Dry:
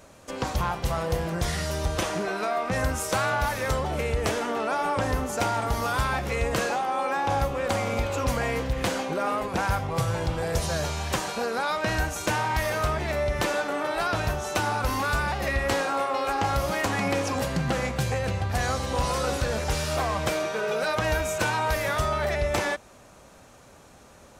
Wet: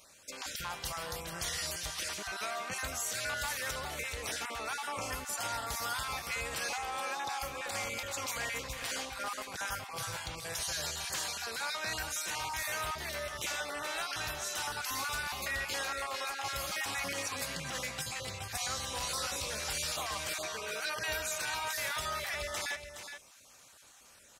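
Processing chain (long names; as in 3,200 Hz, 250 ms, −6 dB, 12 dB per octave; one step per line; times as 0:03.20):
time-frequency cells dropped at random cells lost 20%
tilt shelving filter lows −10 dB, about 1,300 Hz
brickwall limiter −17.5 dBFS, peak gain reduction 10 dB
on a send: single-tap delay 418 ms −9 dB
on the sum: level −8 dB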